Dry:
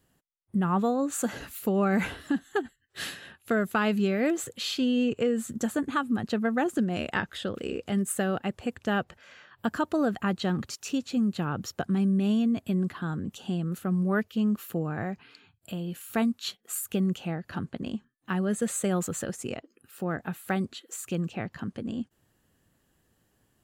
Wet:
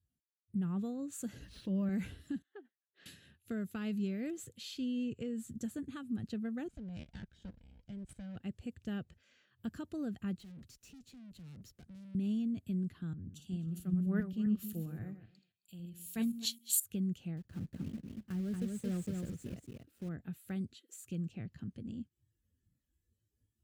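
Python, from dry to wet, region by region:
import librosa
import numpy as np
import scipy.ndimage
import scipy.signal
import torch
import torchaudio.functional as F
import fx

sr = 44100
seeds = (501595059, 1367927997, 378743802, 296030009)

y = fx.chain(x, sr, fx.ripple_eq(per_octave=1.2, db=12),
    fx.resample_linear(factor=3), at=(1.44, 1.89))
y = fx.chain(y, sr, fx.highpass(hz=520.0, slope=12),
    fx.spacing_loss(db_at_10k=42), at=(2.42, 3.06))
y = fx.chain(y, sr, fx.lower_of_two(delay_ms=1.3),
    fx.level_steps(step_db=17),
    fx.air_absorb(metres=67.0), at=(6.68, 8.36))
y = fx.chain(y, sr, fx.highpass(hz=100.0, slope=12),
    fx.tube_stage(drive_db=41.0, bias=0.75),
    fx.band_squash(depth_pct=40), at=(10.39, 12.15))
y = fx.chain(y, sr, fx.reverse_delay_fb(ms=133, feedback_pct=43, wet_db=-8),
    fx.high_shelf(hz=2800.0, db=7.5),
    fx.band_widen(depth_pct=100), at=(13.13, 16.8))
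y = fx.chain(y, sr, fx.block_float(bits=3),
    fx.high_shelf(hz=2500.0, db=-11.0),
    fx.echo_single(ms=235, db=-3.0), at=(17.37, 20.09))
y = fx.noise_reduce_blind(y, sr, reduce_db=13)
y = scipy.signal.sosfilt(scipy.signal.butter(2, 59.0, 'highpass', fs=sr, output='sos'), y)
y = fx.tone_stack(y, sr, knobs='10-0-1')
y = F.gain(torch.from_numpy(y), 7.5).numpy()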